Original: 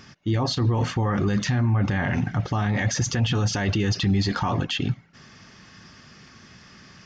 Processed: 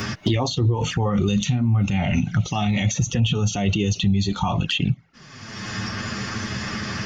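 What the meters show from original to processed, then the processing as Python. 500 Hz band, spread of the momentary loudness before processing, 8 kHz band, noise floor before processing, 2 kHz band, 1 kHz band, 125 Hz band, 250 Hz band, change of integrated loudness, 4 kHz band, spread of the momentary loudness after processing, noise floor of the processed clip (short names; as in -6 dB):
+2.0 dB, 4 LU, n/a, -50 dBFS, +1.0 dB, +1.5 dB, +2.0 dB, +3.0 dB, +1.5 dB, +3.5 dB, 8 LU, -45 dBFS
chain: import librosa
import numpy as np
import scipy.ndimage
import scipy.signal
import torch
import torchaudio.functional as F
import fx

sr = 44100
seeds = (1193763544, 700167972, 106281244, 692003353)

y = fx.noise_reduce_blind(x, sr, reduce_db=11)
y = fx.env_flanger(y, sr, rest_ms=10.4, full_db=-24.5)
y = fx.band_squash(y, sr, depth_pct=100)
y = y * 10.0 ** (5.5 / 20.0)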